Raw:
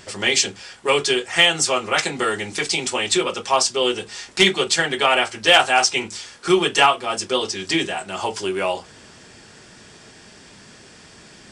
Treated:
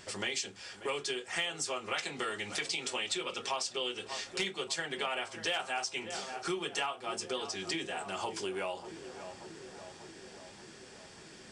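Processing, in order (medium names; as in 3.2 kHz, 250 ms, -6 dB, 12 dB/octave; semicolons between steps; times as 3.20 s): 1.88–4.24 s: peaking EQ 3.1 kHz +5 dB 1.6 oct; filtered feedback delay 586 ms, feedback 72%, low-pass 1.4 kHz, level -16 dB; compression 4:1, threshold -26 dBFS, peak gain reduction 14 dB; bass shelf 210 Hz -3 dB; trim -7.5 dB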